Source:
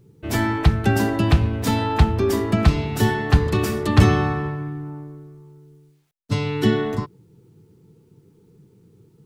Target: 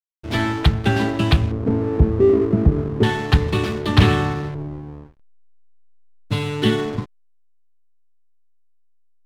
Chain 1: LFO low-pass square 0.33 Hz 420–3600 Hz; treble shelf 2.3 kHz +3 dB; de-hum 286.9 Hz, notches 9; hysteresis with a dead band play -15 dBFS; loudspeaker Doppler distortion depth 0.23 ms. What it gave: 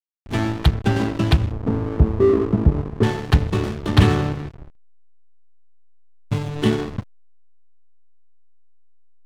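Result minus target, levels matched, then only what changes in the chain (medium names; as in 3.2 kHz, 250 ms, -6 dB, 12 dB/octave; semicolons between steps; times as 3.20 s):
hysteresis with a dead band: distortion +8 dB
change: hysteresis with a dead band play -23.5 dBFS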